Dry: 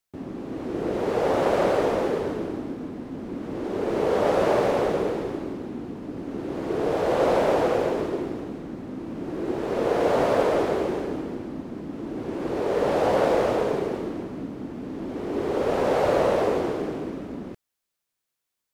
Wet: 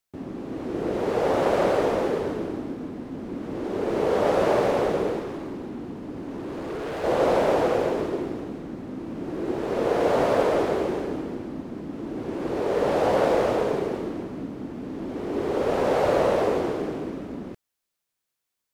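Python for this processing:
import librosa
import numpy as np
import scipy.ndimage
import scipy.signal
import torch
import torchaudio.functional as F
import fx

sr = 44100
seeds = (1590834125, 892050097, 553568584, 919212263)

y = fx.overload_stage(x, sr, gain_db=29.5, at=(5.19, 7.04))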